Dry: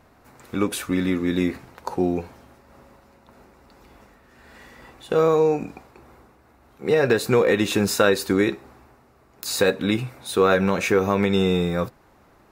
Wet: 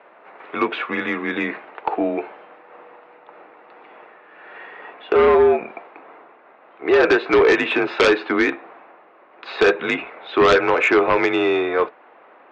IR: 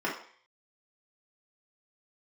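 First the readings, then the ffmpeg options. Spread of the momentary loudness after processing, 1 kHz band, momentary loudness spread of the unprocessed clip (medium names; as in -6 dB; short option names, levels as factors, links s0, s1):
15 LU, +6.0 dB, 12 LU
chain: -af "highpass=f=470:t=q:w=0.5412,highpass=f=470:t=q:w=1.307,lowpass=f=3000:t=q:w=0.5176,lowpass=f=3000:t=q:w=0.7071,lowpass=f=3000:t=q:w=1.932,afreqshift=-66,aeval=exprs='0.473*sin(PI/2*2.82*val(0)/0.473)':c=same,volume=0.708"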